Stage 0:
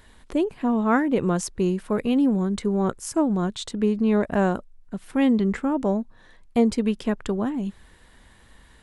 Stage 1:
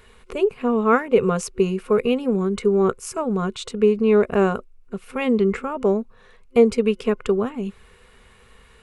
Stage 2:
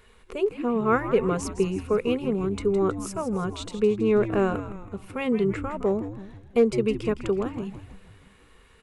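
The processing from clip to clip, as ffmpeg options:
-af "superequalizer=6b=0.251:7b=2.82:10b=2:12b=2.24"
-filter_complex "[0:a]asplit=7[s0][s1][s2][s3][s4][s5][s6];[s1]adelay=162,afreqshift=-98,volume=0.282[s7];[s2]adelay=324,afreqshift=-196,volume=0.146[s8];[s3]adelay=486,afreqshift=-294,volume=0.0759[s9];[s4]adelay=648,afreqshift=-392,volume=0.0398[s10];[s5]adelay=810,afreqshift=-490,volume=0.0207[s11];[s6]adelay=972,afreqshift=-588,volume=0.0107[s12];[s0][s7][s8][s9][s10][s11][s12]amix=inputs=7:normalize=0,asoftclip=type=hard:threshold=0.501,volume=0.562"

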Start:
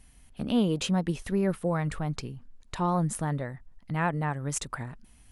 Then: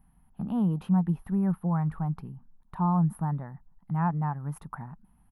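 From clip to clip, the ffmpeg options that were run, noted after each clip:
-af "firequalizer=gain_entry='entry(110,0);entry(170,12);entry(260,0);entry(540,-8);entry(820,9);entry(2200,-12);entry(7200,-29);entry(12000,5)':delay=0.05:min_phase=1,volume=0.473"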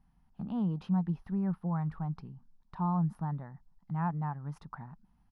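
-af "lowpass=f=5200:t=q:w=2.9,volume=0.531"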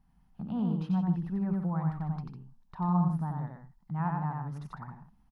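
-af "aecho=1:1:90.38|151.6:0.708|0.355"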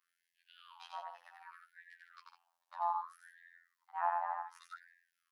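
-af "afftfilt=real='hypot(re,im)*cos(PI*b)':imag='0':win_size=2048:overlap=0.75,afftfilt=real='re*gte(b*sr/1024,520*pow(1600/520,0.5+0.5*sin(2*PI*0.65*pts/sr)))':imag='im*gte(b*sr/1024,520*pow(1600/520,0.5+0.5*sin(2*PI*0.65*pts/sr)))':win_size=1024:overlap=0.75,volume=1.68"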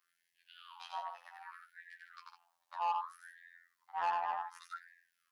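-filter_complex "[0:a]flanger=delay=5.7:depth=5.1:regen=69:speed=0.43:shape=sinusoidal,acrossover=split=1500[s0][s1];[s0]asoftclip=type=tanh:threshold=0.0126[s2];[s2][s1]amix=inputs=2:normalize=0,volume=2.51"

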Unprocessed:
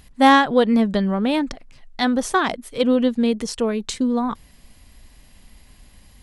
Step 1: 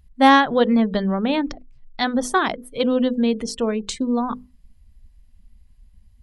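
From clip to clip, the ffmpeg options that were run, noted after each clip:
-af "bandreject=f=50:t=h:w=6,bandreject=f=100:t=h:w=6,bandreject=f=150:t=h:w=6,bandreject=f=200:t=h:w=6,bandreject=f=250:t=h:w=6,bandreject=f=300:t=h:w=6,bandreject=f=350:t=h:w=6,bandreject=f=400:t=h:w=6,bandreject=f=450:t=h:w=6,bandreject=f=500:t=h:w=6,afftdn=nr=21:nf=-40"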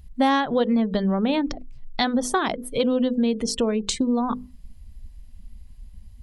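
-af "equalizer=f=1600:t=o:w=1.4:g=-3.5,acompressor=threshold=0.0316:ratio=3,volume=2.51"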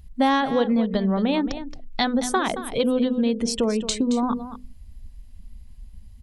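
-af "aecho=1:1:223:0.251"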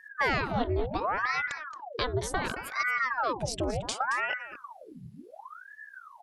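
-af "aeval=exprs='val(0)*sin(2*PI*940*n/s+940*0.85/0.69*sin(2*PI*0.69*n/s))':c=same,volume=0.562"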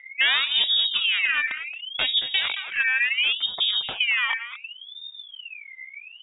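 -af "lowpass=f=3200:t=q:w=0.5098,lowpass=f=3200:t=q:w=0.6013,lowpass=f=3200:t=q:w=0.9,lowpass=f=3200:t=q:w=2.563,afreqshift=-3800,volume=2.11"

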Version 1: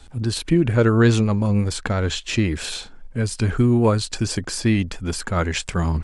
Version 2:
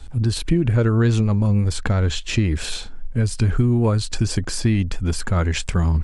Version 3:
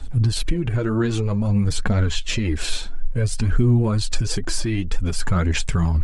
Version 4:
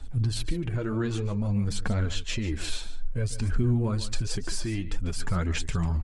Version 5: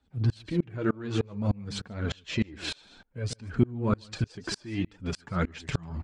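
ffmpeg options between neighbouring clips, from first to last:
-af "lowshelf=f=130:g=11,acompressor=threshold=0.178:ratio=3"
-af "flanger=delay=3:depth=4.6:regen=33:speed=2:shape=triangular,alimiter=limit=0.133:level=0:latency=1:release=106,aphaser=in_gain=1:out_gain=1:delay=3.4:decay=0.38:speed=0.54:type=triangular,volume=1.68"
-af "aecho=1:1:145:0.2,volume=0.422"
-filter_complex "[0:a]asplit=2[s0][s1];[s1]asoftclip=type=tanh:threshold=0.0447,volume=0.355[s2];[s0][s2]amix=inputs=2:normalize=0,highpass=120,lowpass=4700,aeval=exprs='val(0)*pow(10,-31*if(lt(mod(-3.3*n/s,1),2*abs(-3.3)/1000),1-mod(-3.3*n/s,1)/(2*abs(-3.3)/1000),(mod(-3.3*n/s,1)-2*abs(-3.3)/1000)/(1-2*abs(-3.3)/1000))/20)':c=same,volume=2.37"

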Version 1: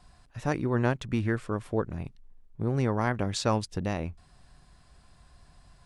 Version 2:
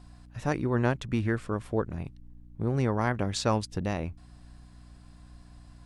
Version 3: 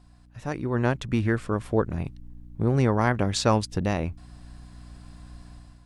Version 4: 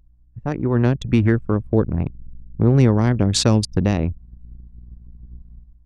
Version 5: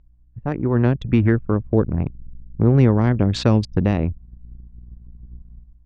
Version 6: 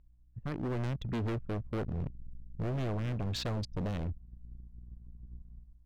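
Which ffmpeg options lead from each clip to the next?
-af "aeval=exprs='val(0)+0.00316*(sin(2*PI*60*n/s)+sin(2*PI*2*60*n/s)/2+sin(2*PI*3*60*n/s)/3+sin(2*PI*4*60*n/s)/4+sin(2*PI*5*60*n/s)/5)':c=same"
-af "dynaudnorm=f=500:g=3:m=3.35,volume=0.631"
-filter_complex "[0:a]acrossover=split=410|3000[s0][s1][s2];[s1]acompressor=threshold=0.02:ratio=10[s3];[s0][s3][s2]amix=inputs=3:normalize=0,anlmdn=10,volume=2.66"
-af "lowpass=3000"
-af "volume=14.1,asoftclip=hard,volume=0.0708,volume=0.376"

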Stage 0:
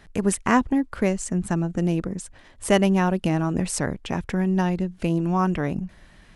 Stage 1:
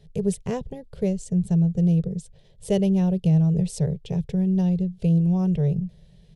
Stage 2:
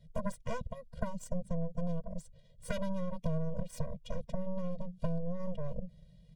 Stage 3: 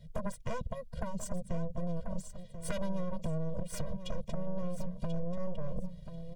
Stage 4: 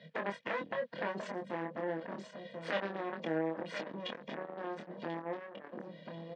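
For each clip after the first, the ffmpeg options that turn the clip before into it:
-af "firequalizer=gain_entry='entry(100,0);entry(150,12);entry(280,-21);entry(420,4);entry(710,-9);entry(1200,-24);entry(3500,-3);entry(6800,-8)':delay=0.05:min_phase=1,volume=0.841"
-af "aeval=exprs='0.335*(cos(1*acos(clip(val(0)/0.335,-1,1)))-cos(1*PI/2))+0.0299*(cos(5*acos(clip(val(0)/0.335,-1,1)))-cos(5*PI/2))+0.15*(cos(6*acos(clip(val(0)/0.335,-1,1)))-cos(6*PI/2))+0.119*(cos(7*acos(clip(val(0)/0.335,-1,1)))-cos(7*PI/2))':c=same,acompressor=threshold=0.0891:ratio=12,afftfilt=real='re*eq(mod(floor(b*sr/1024/230),2),0)':imag='im*eq(mod(floor(b*sr/1024/230),2),0)':win_size=1024:overlap=0.75,volume=0.501"
-filter_complex "[0:a]acompressor=threshold=0.02:ratio=6,asoftclip=type=tanh:threshold=0.0299,asplit=2[s0][s1];[s1]aecho=0:1:1037|2074:0.299|0.0508[s2];[s0][s2]amix=inputs=2:normalize=0,volume=2.11"
-filter_complex "[0:a]asoftclip=type=tanh:threshold=0.0141,highpass=f=250:w=0.5412,highpass=f=250:w=1.3066,equalizer=f=380:t=q:w=4:g=-4,equalizer=f=710:t=q:w=4:g=-4,equalizer=f=1200:t=q:w=4:g=-4,equalizer=f=1800:t=q:w=4:g=9,lowpass=f=3800:w=0.5412,lowpass=f=3800:w=1.3066,asplit=2[s0][s1];[s1]adelay=25,volume=0.596[s2];[s0][s2]amix=inputs=2:normalize=0,volume=3.35"

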